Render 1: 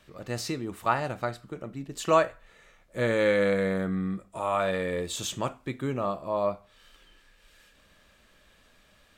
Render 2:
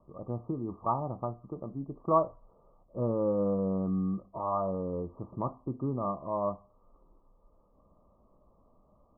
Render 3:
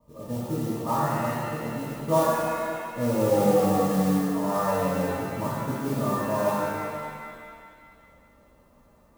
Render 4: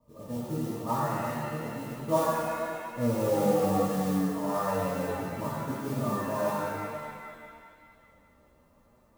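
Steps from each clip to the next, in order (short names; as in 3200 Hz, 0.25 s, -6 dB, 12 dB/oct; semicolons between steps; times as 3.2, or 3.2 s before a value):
Chebyshev low-pass 1200 Hz, order 8; dynamic EQ 540 Hz, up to -5 dB, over -39 dBFS, Q 1.2
modulation noise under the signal 17 dB; notch comb 370 Hz; shimmer reverb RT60 2.1 s, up +7 st, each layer -8 dB, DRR -6.5 dB
flange 1 Hz, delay 7.6 ms, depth 6.4 ms, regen +52%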